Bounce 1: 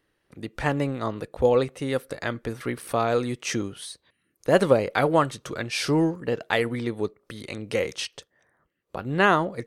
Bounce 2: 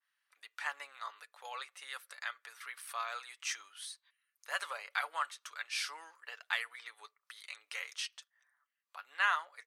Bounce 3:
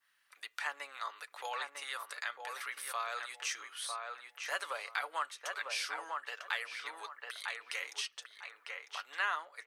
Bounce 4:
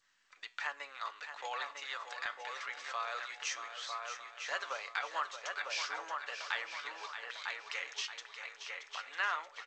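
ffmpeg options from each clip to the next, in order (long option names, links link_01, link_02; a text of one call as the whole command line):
ffmpeg -i in.wav -af "highpass=frequency=1100:width=0.5412,highpass=frequency=1100:width=1.3066,aecho=1:1:6.9:0.36,adynamicequalizer=threshold=0.0126:dfrequency=2000:dqfactor=0.7:tfrequency=2000:tqfactor=0.7:attack=5:release=100:ratio=0.375:range=2:mode=cutabove:tftype=highshelf,volume=-7.5dB" out.wav
ffmpeg -i in.wav -filter_complex "[0:a]asplit=2[link_01][link_02];[link_02]adelay=950,lowpass=frequency=1400:poles=1,volume=-4dB,asplit=2[link_03][link_04];[link_04]adelay=950,lowpass=frequency=1400:poles=1,volume=0.19,asplit=2[link_05][link_06];[link_06]adelay=950,lowpass=frequency=1400:poles=1,volume=0.19[link_07];[link_03][link_05][link_07]amix=inputs=3:normalize=0[link_08];[link_01][link_08]amix=inputs=2:normalize=0,acrossover=split=470[link_09][link_10];[link_10]acompressor=threshold=-51dB:ratio=2[link_11];[link_09][link_11]amix=inputs=2:normalize=0,volume=9dB" out.wav
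ffmpeg -i in.wav -filter_complex "[0:a]flanger=delay=6.8:depth=5.9:regen=86:speed=0.23:shape=triangular,asplit=2[link_01][link_02];[link_02]aecho=0:1:627|1254|1881|2508|3135:0.335|0.157|0.074|0.0348|0.0163[link_03];[link_01][link_03]amix=inputs=2:normalize=0,volume=4dB" -ar 16000 -c:a g722 out.g722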